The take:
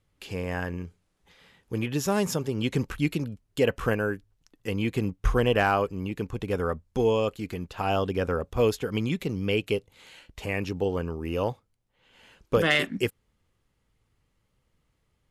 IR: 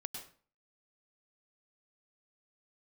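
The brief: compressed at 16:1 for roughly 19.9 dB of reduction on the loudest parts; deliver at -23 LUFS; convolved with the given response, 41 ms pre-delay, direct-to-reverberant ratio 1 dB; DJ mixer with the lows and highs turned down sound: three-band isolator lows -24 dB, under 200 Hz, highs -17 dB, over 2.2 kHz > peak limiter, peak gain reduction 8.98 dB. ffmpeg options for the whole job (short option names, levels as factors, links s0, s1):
-filter_complex "[0:a]acompressor=threshold=0.0141:ratio=16,asplit=2[s0][s1];[1:a]atrim=start_sample=2205,adelay=41[s2];[s1][s2]afir=irnorm=-1:irlink=0,volume=1.12[s3];[s0][s3]amix=inputs=2:normalize=0,acrossover=split=200 2200:gain=0.0631 1 0.141[s4][s5][s6];[s4][s5][s6]amix=inputs=3:normalize=0,volume=12.6,alimiter=limit=0.237:level=0:latency=1"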